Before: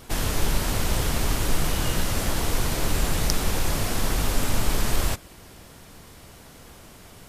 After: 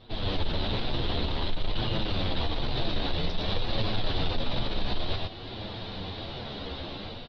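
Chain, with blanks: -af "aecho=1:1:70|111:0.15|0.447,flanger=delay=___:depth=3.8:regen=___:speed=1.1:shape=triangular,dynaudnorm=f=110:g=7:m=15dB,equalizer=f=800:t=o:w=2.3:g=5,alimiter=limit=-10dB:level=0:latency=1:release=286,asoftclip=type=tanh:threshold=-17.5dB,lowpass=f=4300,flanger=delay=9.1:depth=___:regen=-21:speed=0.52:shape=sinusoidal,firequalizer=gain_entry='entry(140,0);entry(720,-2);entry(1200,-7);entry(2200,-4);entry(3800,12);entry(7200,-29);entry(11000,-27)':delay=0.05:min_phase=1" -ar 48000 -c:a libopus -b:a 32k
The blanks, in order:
7.9, -15, 5.9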